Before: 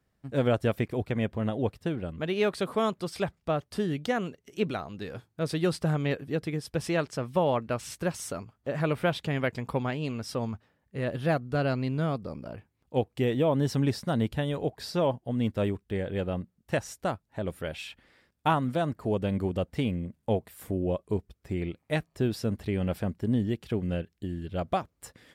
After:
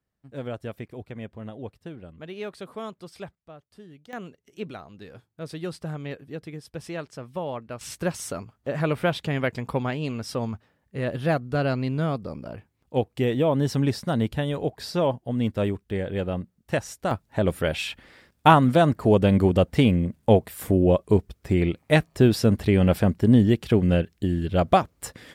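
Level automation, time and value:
−8.5 dB
from 0:03.35 −17.5 dB
from 0:04.13 −6 dB
from 0:07.81 +3 dB
from 0:17.11 +10 dB

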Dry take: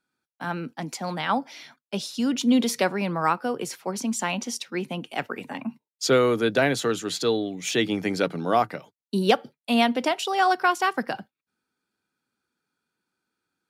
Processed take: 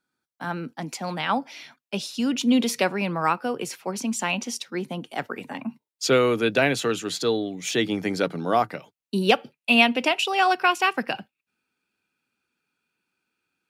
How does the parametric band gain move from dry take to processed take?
parametric band 2,600 Hz 0.35 octaves
−3 dB
from 0:00.84 +5.5 dB
from 0:04.62 −6.5 dB
from 0:05.33 0 dB
from 0:06.04 +8 dB
from 0:07.07 −1 dB
from 0:08.74 +6.5 dB
from 0:09.32 +14 dB

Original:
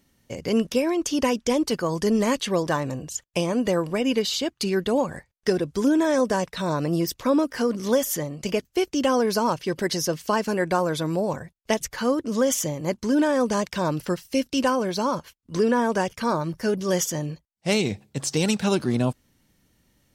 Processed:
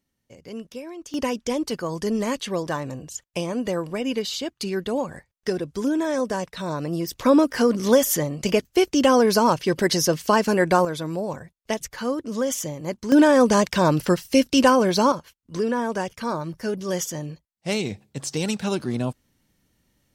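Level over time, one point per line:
−13.5 dB
from 0:01.14 −3 dB
from 0:07.13 +4.5 dB
from 0:10.85 −3 dB
from 0:13.12 +6 dB
from 0:15.12 −3 dB

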